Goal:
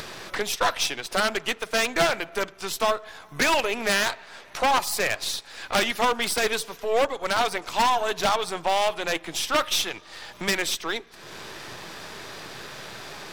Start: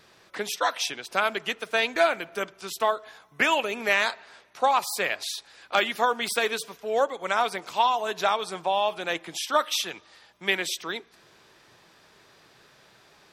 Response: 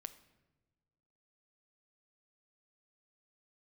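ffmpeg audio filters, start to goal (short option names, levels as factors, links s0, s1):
-af "aeval=exprs='if(lt(val(0),0),0.447*val(0),val(0))':c=same,acompressor=mode=upward:threshold=0.0282:ratio=2.5,aeval=exprs='0.106*(abs(mod(val(0)/0.106+3,4)-2)-1)':c=same,volume=2"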